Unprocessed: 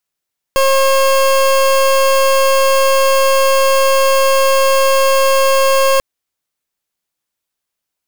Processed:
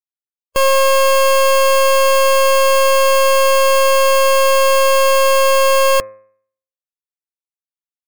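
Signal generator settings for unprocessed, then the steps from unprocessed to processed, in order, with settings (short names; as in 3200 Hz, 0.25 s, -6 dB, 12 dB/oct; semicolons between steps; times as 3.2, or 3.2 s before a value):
pulse 539 Hz, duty 28% -11 dBFS 5.44 s
per-bin expansion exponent 1.5; bell 5400 Hz -3 dB 0.34 oct; de-hum 106.3 Hz, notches 24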